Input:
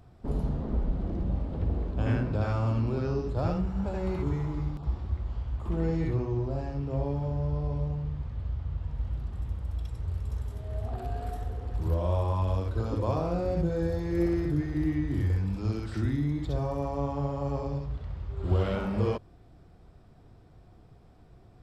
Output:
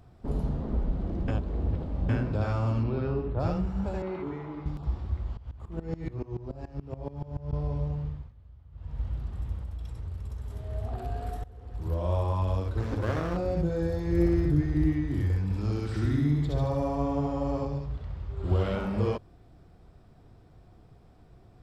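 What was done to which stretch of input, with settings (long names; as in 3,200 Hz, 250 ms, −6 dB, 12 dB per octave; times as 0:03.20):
0:01.28–0:02.09: reverse
0:02.83–0:03.39: low-pass filter 4,700 Hz → 2,700 Hz 24 dB per octave
0:04.02–0:04.66: three-way crossover with the lows and the highs turned down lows −19 dB, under 200 Hz, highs −20 dB, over 3,600 Hz
0:05.37–0:07.53: tremolo with a ramp in dB swelling 7 Hz, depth 21 dB
0:08.05–0:09.00: duck −18.5 dB, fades 0.28 s
0:09.62–0:10.50: downward compressor, threshold −32 dBFS
0:11.44–0:12.13: fade in, from −18 dB
0:12.77–0:13.37: lower of the sound and its delayed copy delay 0.53 ms
0:14.07–0:14.93: low-shelf EQ 190 Hz +7 dB
0:15.43–0:17.65: repeating echo 75 ms, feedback 53%, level −3.5 dB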